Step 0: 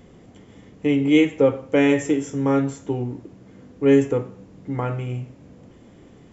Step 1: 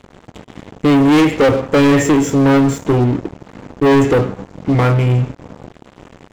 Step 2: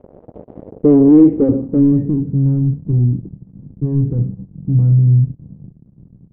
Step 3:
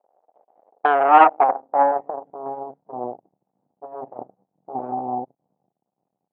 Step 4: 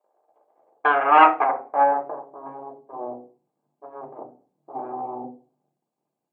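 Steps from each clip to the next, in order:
leveller curve on the samples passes 5; high-shelf EQ 4,400 Hz −5.5 dB; level −1.5 dB
low-pass filter sweep 560 Hz → 160 Hz, 0:00.60–0:02.40; level −2.5 dB
harmonic generator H 3 −11 dB, 4 −26 dB, 6 −10 dB, 8 −16 dB, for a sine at −1 dBFS; high-pass with resonance 770 Hz, resonance Q 4.9; speech leveller 2 s; level −3 dB
convolution reverb RT60 0.40 s, pre-delay 3 ms, DRR 3 dB; level −2 dB

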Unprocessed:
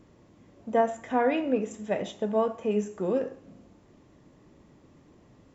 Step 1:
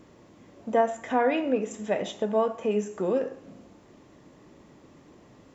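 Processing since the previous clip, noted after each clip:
low-shelf EQ 170 Hz −8.5 dB
in parallel at 0 dB: downward compressor, threshold −35 dBFS, peak gain reduction 15 dB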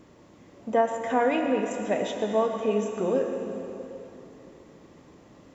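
dense smooth reverb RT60 3.2 s, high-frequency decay 0.85×, pre-delay 95 ms, DRR 5 dB

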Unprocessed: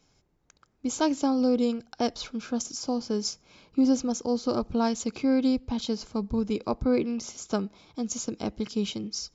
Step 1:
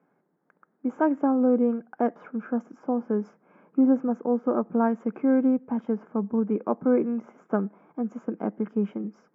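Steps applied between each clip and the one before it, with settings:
elliptic band-pass filter 180–1,700 Hz, stop band 40 dB
level +3 dB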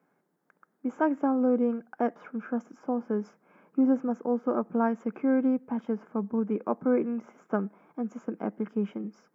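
high-shelf EQ 2,000 Hz +9 dB
level −3.5 dB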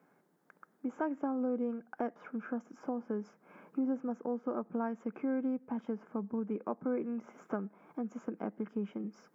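downward compressor 2 to 1, threshold −44 dBFS, peak gain reduction 13.5 dB
level +3 dB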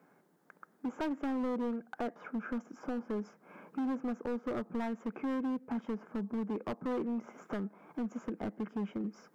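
hard clipping −34 dBFS, distortion −9 dB
level +3 dB

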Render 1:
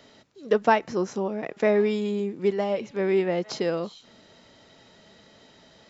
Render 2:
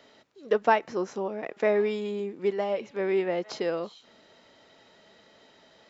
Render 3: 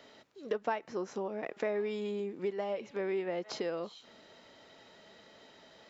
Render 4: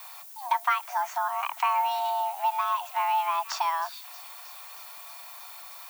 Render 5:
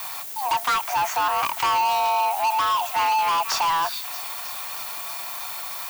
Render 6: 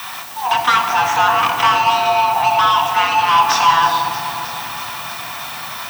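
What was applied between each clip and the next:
bass and treble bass −9 dB, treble −5 dB; level −1.5 dB
downward compressor 2.5 to 1, threshold −35 dBFS, peak gain reduction 13 dB
background noise violet −54 dBFS; delay with a high-pass on its return 316 ms, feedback 78%, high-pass 2,000 Hz, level −16 dB; frequency shifter +490 Hz; level +8 dB
leveller curve on the samples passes 5; level −6 dB
convolution reverb RT60 4.3 s, pre-delay 3 ms, DRR 1.5 dB; level −1.5 dB

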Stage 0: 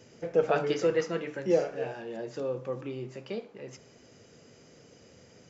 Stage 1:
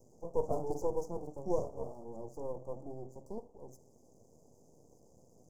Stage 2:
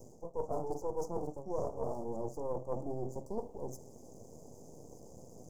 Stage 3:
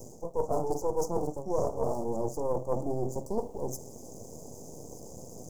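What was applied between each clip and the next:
half-wave rectification; inverse Chebyshev band-stop filter 1,700–3,400 Hz, stop band 60 dB; level −2.5 dB
dynamic equaliser 1,400 Hz, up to +6 dB, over −51 dBFS, Q 0.83; reversed playback; downward compressor 8 to 1, threshold −42 dBFS, peak gain reduction 18.5 dB; reversed playback; level +10 dB
high-shelf EQ 4,600 Hz +7 dB; level +7 dB

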